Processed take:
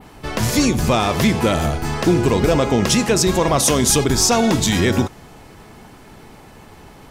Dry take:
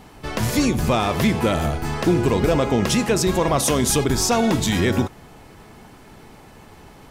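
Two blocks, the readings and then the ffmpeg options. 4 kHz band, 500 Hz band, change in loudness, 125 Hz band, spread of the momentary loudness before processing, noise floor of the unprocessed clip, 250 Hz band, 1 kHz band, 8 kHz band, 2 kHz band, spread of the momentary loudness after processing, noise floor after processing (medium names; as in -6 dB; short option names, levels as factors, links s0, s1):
+5.0 dB, +2.5 dB, +3.0 dB, +2.5 dB, 5 LU, -46 dBFS, +2.5 dB, +2.5 dB, +5.5 dB, +3.0 dB, 6 LU, -43 dBFS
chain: -af "adynamicequalizer=threshold=0.0126:dfrequency=6000:dqfactor=1:tfrequency=6000:tqfactor=1:attack=5:release=100:ratio=0.375:range=2:mode=boostabove:tftype=bell,volume=1.33"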